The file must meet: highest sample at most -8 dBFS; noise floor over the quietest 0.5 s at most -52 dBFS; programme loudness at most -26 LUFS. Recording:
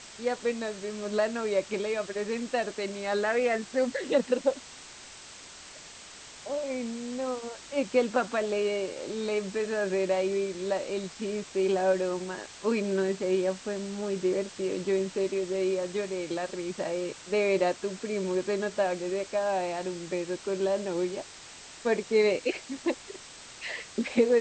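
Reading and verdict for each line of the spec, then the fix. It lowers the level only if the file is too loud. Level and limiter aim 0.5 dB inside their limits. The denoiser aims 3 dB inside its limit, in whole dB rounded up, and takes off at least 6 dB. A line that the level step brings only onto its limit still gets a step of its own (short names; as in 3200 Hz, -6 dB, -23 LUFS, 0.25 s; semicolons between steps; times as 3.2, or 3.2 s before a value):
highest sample -11.0 dBFS: OK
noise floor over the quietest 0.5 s -47 dBFS: fail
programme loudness -30.0 LUFS: OK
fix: denoiser 8 dB, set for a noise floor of -47 dBFS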